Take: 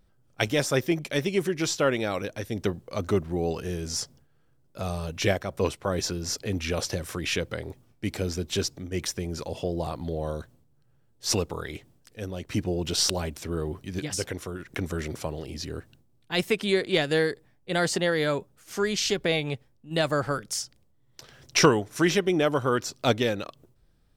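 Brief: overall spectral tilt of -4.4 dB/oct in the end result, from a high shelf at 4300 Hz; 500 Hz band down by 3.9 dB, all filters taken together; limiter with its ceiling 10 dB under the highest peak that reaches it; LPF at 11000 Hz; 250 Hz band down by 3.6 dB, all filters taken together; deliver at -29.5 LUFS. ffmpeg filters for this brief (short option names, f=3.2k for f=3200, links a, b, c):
-af "lowpass=11k,equalizer=f=250:t=o:g=-4,equalizer=f=500:t=o:g=-3.5,highshelf=f=4.3k:g=-7,volume=3.5dB,alimiter=limit=-16dB:level=0:latency=1"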